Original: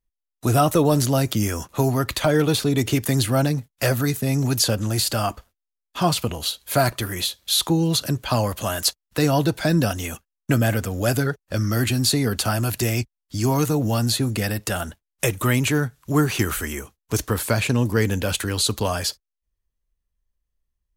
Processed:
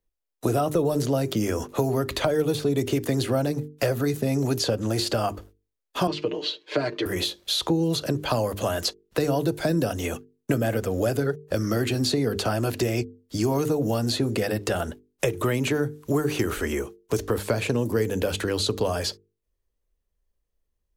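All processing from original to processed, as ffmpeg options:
-filter_complex "[0:a]asettb=1/sr,asplit=3[a][b][c];[a]atrim=end=6.074[d];[b]atrim=start=6.07:end=7.06,asetpts=PTS-STARTPTS,afade=t=in:d=0.004:c=qsin,afade=t=out:st=0.986:d=0.004:c=qsin,highpass=320,equalizer=f=350:t=q:w=4:g=6,equalizer=f=510:t=q:w=4:g=-4,equalizer=f=740:t=q:w=4:g=-9,equalizer=f=1.3k:t=q:w=4:g=-9,equalizer=f=3.7k:t=q:w=4:g=-3,lowpass=f=4.2k:w=0.5412,lowpass=f=4.2k:w=1.3066,aecho=1:1:6.6:0.77,atrim=end_sample=43659[e];[c]atrim=start=7.056[f];[d][e]acrossfade=d=0.004:c1=hsin:c2=qsin[g];[g][f]acrossfade=d=0.004:c1=qsin:c2=hsin,equalizer=f=440:t=o:w=1.3:g=10.5,bandreject=f=50:t=h:w=6,bandreject=f=100:t=h:w=6,bandreject=f=150:t=h:w=6,bandreject=f=200:t=h:w=6,bandreject=f=250:t=h:w=6,bandreject=f=300:t=h:w=6,bandreject=f=350:t=h:w=6,bandreject=f=400:t=h:w=6,bandreject=f=450:t=h:w=6,acrossover=split=160|6400[h][i][j];[h]acompressor=threshold=-31dB:ratio=4[k];[i]acompressor=threshold=-23dB:ratio=4[l];[j]acompressor=threshold=-43dB:ratio=4[m];[k][l][m]amix=inputs=3:normalize=0"

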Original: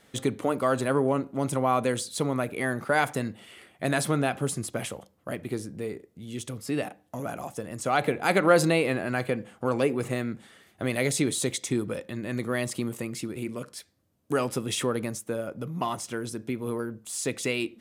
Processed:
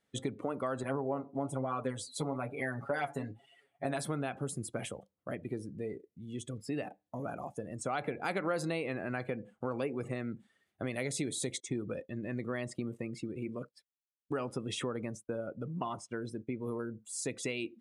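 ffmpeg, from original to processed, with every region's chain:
-filter_complex "[0:a]asettb=1/sr,asplit=3[a][b][c];[a]atrim=end=0.834[d];[b]atrim=start=0.83:end=3.97,asetpts=PTS-STARTPTS,afade=t=in:d=0.004:c=qsin,afade=t=out:st=3.136:d=0.004:c=qsin,equalizer=f=750:t=o:w=0.56:g=7.5,aecho=1:1:7.2:0.96,atrim=end_sample=138474,flanger=delay=5.4:depth=8:regen=61:speed=1.1:shape=triangular[e];[c]atrim=start=3.966[f];[d][e]acrossfade=d=0.004:c1=hsin:c2=qsin[g];[g][f]acrossfade=d=0.004:c1=qsin:c2=hsin,asettb=1/sr,asplit=3[h][i][j];[h]atrim=end=11.604[k];[i]atrim=start=11.6:end=16.64,asetpts=PTS-STARTPTS,afade=t=in:d=0.004:c=qsin,afade=t=out:st=5.036:d=0.004:c=qsin,highshelf=f=4.8k:g=-5.5,agate=range=-33dB:threshold=-41dB:ratio=3:release=100:detection=peak[l];[j]atrim=start=16.636[m];[k][l]acrossfade=d=0.004:c1=hsin:c2=qsin[n];[n][m]acrossfade=d=0.004:c1=qsin:c2=hsin,afftdn=nr=17:nf=-41,lowpass=12k,acompressor=threshold=-28dB:ratio=3,volume=-4.5dB"

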